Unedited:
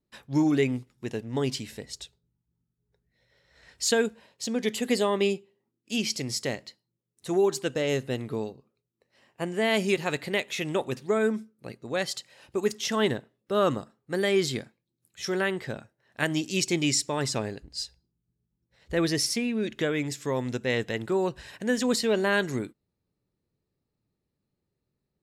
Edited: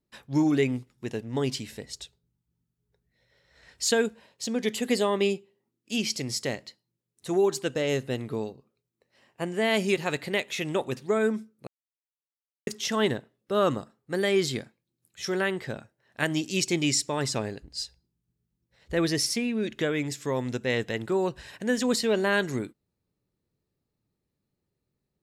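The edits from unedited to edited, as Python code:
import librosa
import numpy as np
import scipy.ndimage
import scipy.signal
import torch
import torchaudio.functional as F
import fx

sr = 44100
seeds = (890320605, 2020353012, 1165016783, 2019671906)

y = fx.edit(x, sr, fx.silence(start_s=11.67, length_s=1.0), tone=tone)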